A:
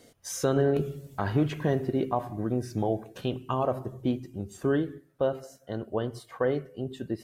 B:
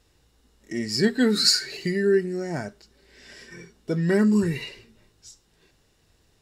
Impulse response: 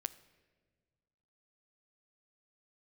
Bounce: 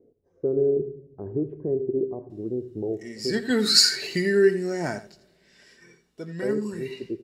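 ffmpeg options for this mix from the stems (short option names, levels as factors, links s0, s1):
-filter_complex "[0:a]lowpass=f=400:t=q:w=4.9,volume=0.299,asplit=3[s0][s1][s2];[s0]atrim=end=3.51,asetpts=PTS-STARTPTS,afade=t=out:st=3.506:d=0.004:c=hsin[s3];[s1]atrim=start=3.51:end=6.42,asetpts=PTS-STARTPTS,volume=0[s4];[s2]atrim=start=6.42,asetpts=PTS-STARTPTS,afade=t=in:d=0.004:c=hsin[s5];[s3][s4][s5]concat=n=3:v=0:a=1,asplit=3[s6][s7][s8];[s7]volume=0.316[s9];[s8]volume=0.168[s10];[1:a]lowshelf=f=170:g=-9,adelay=2300,volume=0.944,afade=t=in:st=3.16:d=0.74:silence=0.251189,afade=t=out:st=4.85:d=0.55:silence=0.251189,asplit=3[s11][s12][s13];[s12]volume=0.708[s14];[s13]volume=0.335[s15];[2:a]atrim=start_sample=2205[s16];[s9][s14]amix=inputs=2:normalize=0[s17];[s17][s16]afir=irnorm=-1:irlink=0[s18];[s10][s15]amix=inputs=2:normalize=0,aecho=0:1:84:1[s19];[s6][s11][s18][s19]amix=inputs=4:normalize=0"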